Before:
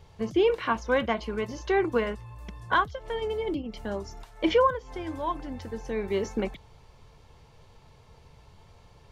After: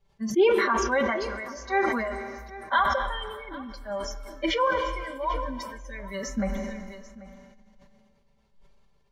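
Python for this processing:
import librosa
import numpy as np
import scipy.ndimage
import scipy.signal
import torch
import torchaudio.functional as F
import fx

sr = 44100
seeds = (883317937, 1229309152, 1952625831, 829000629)

p1 = fx.noise_reduce_blind(x, sr, reduce_db=20)
p2 = p1 + 0.89 * np.pad(p1, (int(5.1 * sr / 1000.0), 0))[:len(p1)]
p3 = p2 + fx.echo_single(p2, sr, ms=788, db=-18.5, dry=0)
p4 = fx.rev_schroeder(p3, sr, rt60_s=3.3, comb_ms=33, drr_db=15.0)
p5 = fx.sustainer(p4, sr, db_per_s=32.0)
y = F.gain(torch.from_numpy(p5), -2.0).numpy()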